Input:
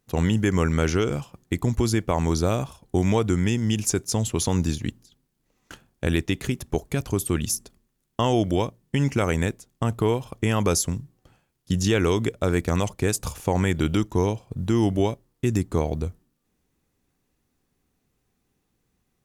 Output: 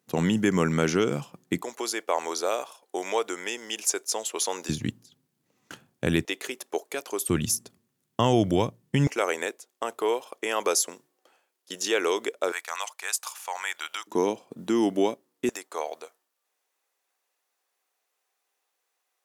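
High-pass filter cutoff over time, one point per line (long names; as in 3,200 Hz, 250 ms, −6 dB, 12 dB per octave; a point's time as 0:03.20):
high-pass filter 24 dB per octave
150 Hz
from 0:01.62 450 Hz
from 0:04.69 110 Hz
from 0:06.25 400 Hz
from 0:07.29 100 Hz
from 0:09.07 400 Hz
from 0:12.52 870 Hz
from 0:14.07 240 Hz
from 0:15.49 570 Hz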